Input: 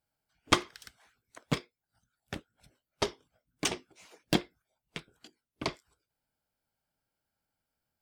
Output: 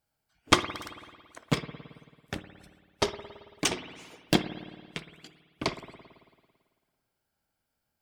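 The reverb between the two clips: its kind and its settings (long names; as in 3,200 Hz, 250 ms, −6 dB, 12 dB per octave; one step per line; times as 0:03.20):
spring reverb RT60 1.7 s, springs 55 ms, chirp 80 ms, DRR 10.5 dB
level +3.5 dB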